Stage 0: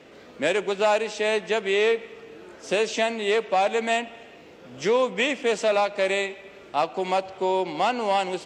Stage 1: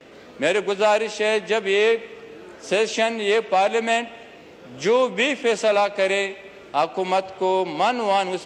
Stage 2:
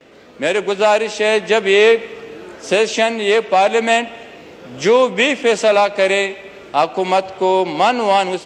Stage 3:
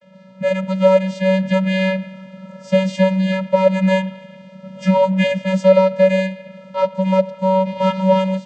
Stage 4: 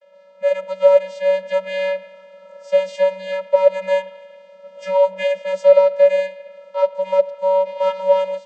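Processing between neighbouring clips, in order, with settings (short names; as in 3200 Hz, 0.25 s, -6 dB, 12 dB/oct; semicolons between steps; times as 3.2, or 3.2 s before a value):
gate with hold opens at -41 dBFS; gain +3 dB
AGC
vocoder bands 16, square 189 Hz
ladder high-pass 440 Hz, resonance 45%; gain +3.5 dB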